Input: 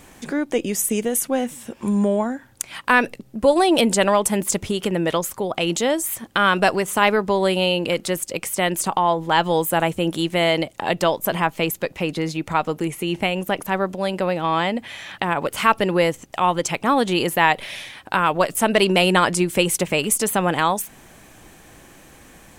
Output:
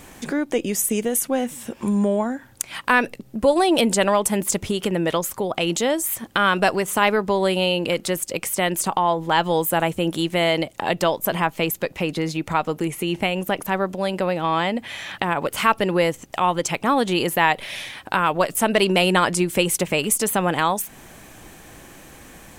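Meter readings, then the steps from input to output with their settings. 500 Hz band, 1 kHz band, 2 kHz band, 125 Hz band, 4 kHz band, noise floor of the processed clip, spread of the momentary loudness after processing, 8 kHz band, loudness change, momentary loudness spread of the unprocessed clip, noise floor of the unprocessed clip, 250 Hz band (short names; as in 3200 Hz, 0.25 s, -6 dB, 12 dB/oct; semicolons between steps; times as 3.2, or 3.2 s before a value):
-1.0 dB, -1.0 dB, -1.0 dB, -0.5 dB, -1.0 dB, -47 dBFS, 7 LU, 0.0 dB, -1.0 dB, 8 LU, -48 dBFS, -0.5 dB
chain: bell 14000 Hz +3 dB 0.28 oct; in parallel at -1.5 dB: compressor, threshold -29 dBFS, peak gain reduction 17.5 dB; on the sum: gain -2.5 dB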